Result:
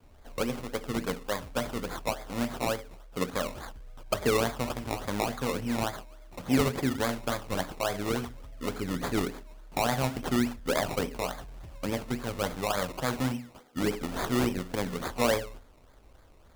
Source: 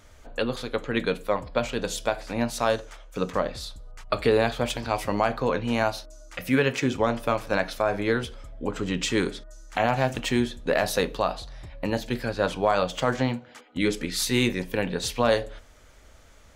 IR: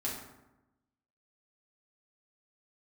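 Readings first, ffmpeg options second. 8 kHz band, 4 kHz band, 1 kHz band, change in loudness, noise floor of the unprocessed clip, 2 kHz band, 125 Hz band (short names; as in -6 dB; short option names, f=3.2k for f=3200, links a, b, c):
-3.0 dB, -5.0 dB, -5.0 dB, -5.0 dB, -52 dBFS, -6.0 dB, -3.5 dB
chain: -filter_complex "[0:a]asplit=2[a][b];[b]lowpass=1.1k[c];[1:a]atrim=start_sample=2205,atrim=end_sample=6615[d];[c][d]afir=irnorm=-1:irlink=0,volume=-16.5dB[e];[a][e]amix=inputs=2:normalize=0,adynamicequalizer=threshold=0.0158:dfrequency=530:dqfactor=0.97:tfrequency=530:tqfactor=0.97:attack=5:release=100:ratio=0.375:range=2.5:mode=cutabove:tftype=bell,acrusher=samples=22:mix=1:aa=0.000001:lfo=1:lforange=13.2:lforate=3.5,volume=-4.5dB"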